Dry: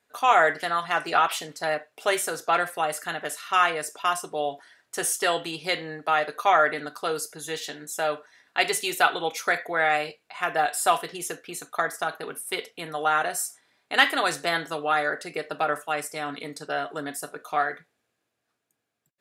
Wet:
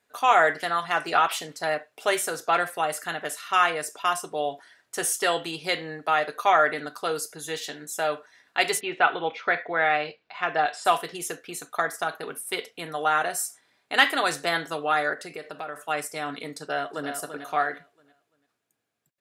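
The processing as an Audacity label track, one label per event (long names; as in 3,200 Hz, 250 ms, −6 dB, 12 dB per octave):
8.790000	10.840000	low-pass filter 2,600 Hz → 6,000 Hz 24 dB per octave
15.130000	15.840000	downward compressor 2.5 to 1, threshold −35 dBFS
16.590000	17.100000	delay throw 340 ms, feedback 30%, level −8 dB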